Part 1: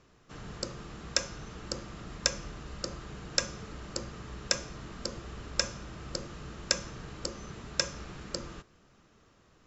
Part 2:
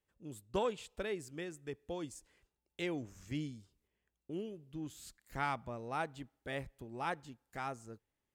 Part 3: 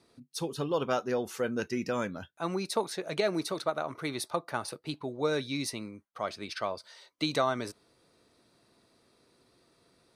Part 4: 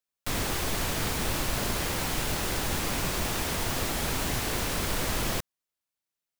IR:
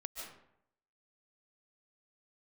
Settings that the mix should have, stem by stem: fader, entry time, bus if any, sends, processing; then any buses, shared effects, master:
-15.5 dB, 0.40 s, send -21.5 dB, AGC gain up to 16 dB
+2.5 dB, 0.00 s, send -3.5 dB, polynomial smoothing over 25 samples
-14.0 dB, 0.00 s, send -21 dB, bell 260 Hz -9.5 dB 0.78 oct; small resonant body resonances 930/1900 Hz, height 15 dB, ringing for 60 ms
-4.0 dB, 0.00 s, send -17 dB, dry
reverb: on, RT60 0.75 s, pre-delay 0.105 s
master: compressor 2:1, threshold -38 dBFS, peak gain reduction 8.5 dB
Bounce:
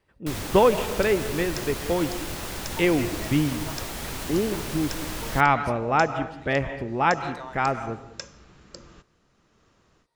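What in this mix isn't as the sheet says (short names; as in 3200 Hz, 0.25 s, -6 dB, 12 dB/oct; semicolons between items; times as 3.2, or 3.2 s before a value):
stem 2 +2.5 dB -> +14.0 dB; stem 4: send off; master: missing compressor 2:1, threshold -38 dBFS, peak gain reduction 8.5 dB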